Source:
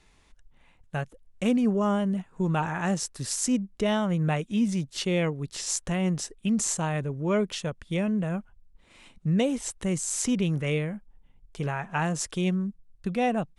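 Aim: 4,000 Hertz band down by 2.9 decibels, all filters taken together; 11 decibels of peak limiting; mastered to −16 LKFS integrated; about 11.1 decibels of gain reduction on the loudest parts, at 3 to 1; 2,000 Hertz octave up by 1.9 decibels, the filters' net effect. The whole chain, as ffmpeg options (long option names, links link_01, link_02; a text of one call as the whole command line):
ffmpeg -i in.wav -af "equalizer=frequency=2000:width_type=o:gain=4,equalizer=frequency=4000:width_type=o:gain=-6,acompressor=threshold=-36dB:ratio=3,volume=23dB,alimiter=limit=-7.5dB:level=0:latency=1" out.wav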